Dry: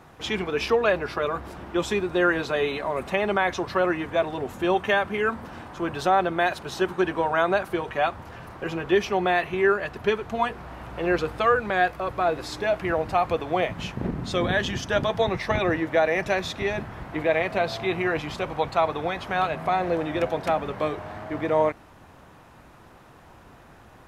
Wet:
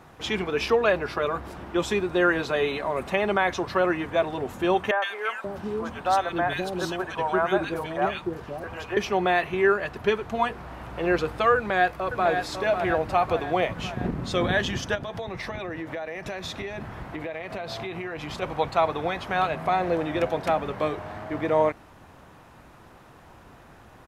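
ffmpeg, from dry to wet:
-filter_complex "[0:a]asettb=1/sr,asplit=3[s0][s1][s2];[s0]atrim=end=4.914[s3];[s1]atrim=start=4.91:end=8.97,asetpts=PTS-STARTPTS,afade=t=in:d=0.004:c=qsin,afade=t=out:st=4.056:d=0.004:c=qsin,acrossover=split=480|1800[s4][s5][s6];[s6]adelay=110[s7];[s4]adelay=530[s8];[s8][s5][s7]amix=inputs=3:normalize=0,atrim=end_sample=179046[s9];[s2]atrim=start=8.966[s10];[s3][s9]acrossfade=d=0.004:c1=hsin:c2=qsin[s11];[s11][s10]acrossfade=d=0.004:c1=qsin:c2=hsin,asplit=2[s12][s13];[s13]afade=t=in:st=11.56:d=0.01,afade=t=out:st=12.29:d=0.01,aecho=0:1:550|1100|1650|2200|2750|3300|3850|4400:0.473151|0.283891|0.170334|0.102201|0.0613204|0.0367922|0.0220753|0.0132452[s14];[s12][s14]amix=inputs=2:normalize=0,asplit=3[s15][s16][s17];[s15]afade=t=out:st=14.94:d=0.02[s18];[s16]acompressor=threshold=0.0355:ratio=12:attack=3.2:release=140:knee=1:detection=peak,afade=t=in:st=14.94:d=0.02,afade=t=out:st=18.41:d=0.02[s19];[s17]afade=t=in:st=18.41:d=0.02[s20];[s18][s19][s20]amix=inputs=3:normalize=0"

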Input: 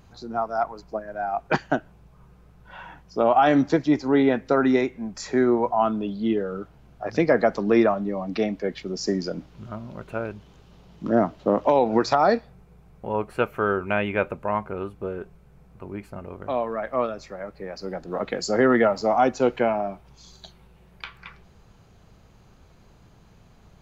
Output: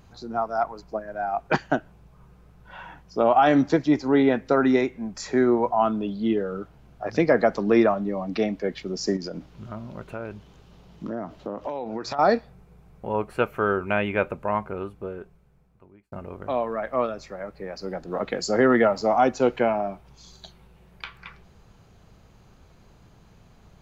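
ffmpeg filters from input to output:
-filter_complex "[0:a]asettb=1/sr,asplit=3[s0][s1][s2];[s0]atrim=end=9.164[s3];[s1]atrim=start=9.16:end=12.19,asetpts=PTS-STARTPTS,afade=t=in:d=0.004:c=qsin,afade=t=out:st=3.026:d=0.004:c=qsin,acompressor=threshold=0.0355:ratio=4:attack=3.2:release=140:knee=1:detection=peak[s4];[s2]atrim=start=12.186[s5];[s3][s4]acrossfade=d=0.004:c1=hsin:c2=qsin[s6];[s6][s5]acrossfade=d=0.004:c1=qsin:c2=hsin,asplit=2[s7][s8];[s7]atrim=end=16.12,asetpts=PTS-STARTPTS,afade=t=out:st=14.63:d=1.49[s9];[s8]atrim=start=16.12,asetpts=PTS-STARTPTS,afade=t=in:d=0.004:c=hsin[s10];[s9][s10]concat=n=2:v=0:a=1"

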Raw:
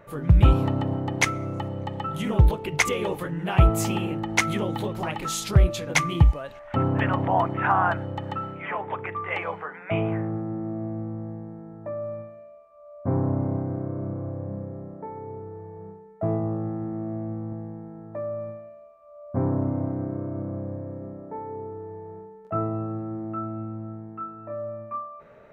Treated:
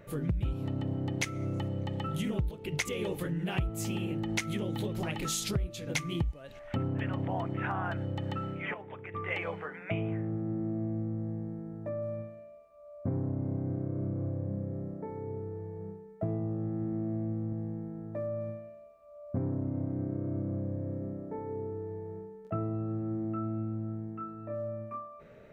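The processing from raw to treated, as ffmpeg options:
-filter_complex "[0:a]asplit=3[s0][s1][s2];[s0]atrim=end=8.742[s3];[s1]atrim=start=8.738:end=9.142,asetpts=PTS-STARTPTS,volume=0.355[s4];[s2]atrim=start=9.138[s5];[s3][s4]acrossfade=d=0.004:c1=hsin:c2=hsin[s6];[s6][s5]acrossfade=d=0.004:c1=hsin:c2=hsin,equalizer=f=1000:t=o:w=1.5:g=-11,acompressor=threshold=0.0282:ratio=6,volume=1.19"

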